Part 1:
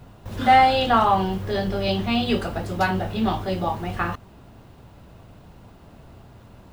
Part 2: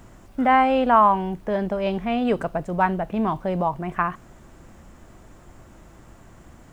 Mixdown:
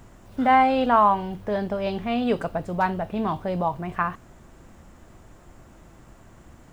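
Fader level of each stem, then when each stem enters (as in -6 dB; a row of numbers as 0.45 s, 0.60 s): -14.0 dB, -2.0 dB; 0.00 s, 0.00 s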